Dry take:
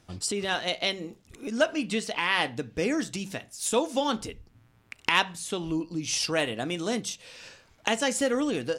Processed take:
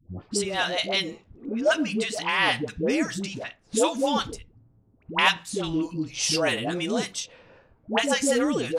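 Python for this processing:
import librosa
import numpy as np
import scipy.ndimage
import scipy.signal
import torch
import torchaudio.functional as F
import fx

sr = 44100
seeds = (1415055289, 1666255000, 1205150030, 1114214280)

y = fx.env_lowpass(x, sr, base_hz=540.0, full_db=-26.0)
y = fx.peak_eq(y, sr, hz=2000.0, db=-10.5, octaves=2.7, at=(4.21, 4.97))
y = fx.dispersion(y, sr, late='highs', ms=106.0, hz=560.0)
y = y * librosa.db_to_amplitude(3.0)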